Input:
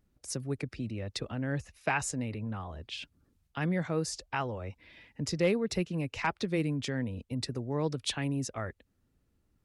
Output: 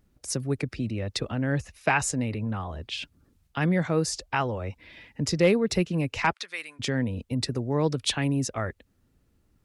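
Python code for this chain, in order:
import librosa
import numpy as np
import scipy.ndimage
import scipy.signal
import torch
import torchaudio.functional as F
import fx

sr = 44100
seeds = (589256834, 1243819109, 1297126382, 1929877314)

y = fx.cheby1_bandpass(x, sr, low_hz=1400.0, high_hz=9900.0, order=2, at=(6.32, 6.79), fade=0.02)
y = y * 10.0 ** (6.5 / 20.0)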